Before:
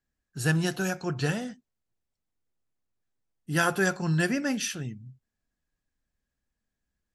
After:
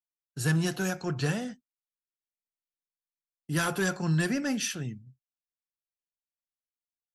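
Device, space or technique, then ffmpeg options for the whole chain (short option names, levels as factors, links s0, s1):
one-band saturation: -filter_complex "[0:a]agate=range=0.0224:threshold=0.0126:ratio=3:detection=peak,acrossover=split=230|4300[s0][s1][s2];[s1]asoftclip=type=tanh:threshold=0.0562[s3];[s0][s3][s2]amix=inputs=3:normalize=0"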